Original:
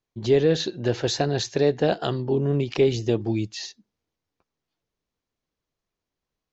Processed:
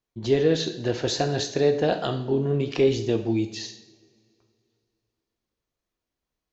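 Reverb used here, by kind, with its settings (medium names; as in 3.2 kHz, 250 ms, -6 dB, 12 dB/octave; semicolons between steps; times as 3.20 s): two-slope reverb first 0.66 s, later 2.7 s, from -22 dB, DRR 5.5 dB; trim -1.5 dB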